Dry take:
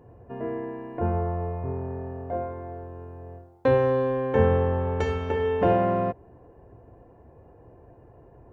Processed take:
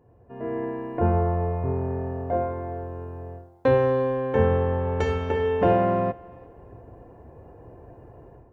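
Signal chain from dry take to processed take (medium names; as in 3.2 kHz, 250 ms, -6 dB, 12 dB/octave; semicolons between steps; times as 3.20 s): thinning echo 346 ms, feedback 27%, level -23 dB; level rider gain up to 12.5 dB; trim -7.5 dB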